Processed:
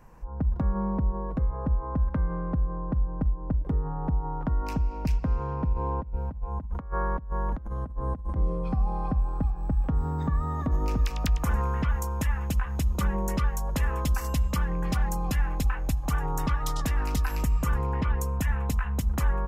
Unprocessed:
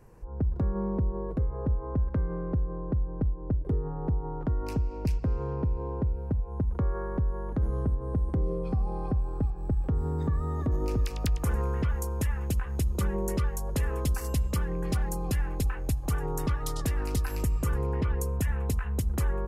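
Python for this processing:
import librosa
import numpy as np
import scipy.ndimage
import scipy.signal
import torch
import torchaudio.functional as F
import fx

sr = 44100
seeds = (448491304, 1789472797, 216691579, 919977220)

y = fx.peak_eq(x, sr, hz=4500.0, db=-3.5, octaves=0.29)
y = fx.over_compress(y, sr, threshold_db=-31.0, ratio=-0.5, at=(5.73, 8.36))
y = fx.graphic_eq_15(y, sr, hz=(100, 400, 1000, 10000), db=(-10, -11, 3, -8))
y = y * 10.0 ** (4.5 / 20.0)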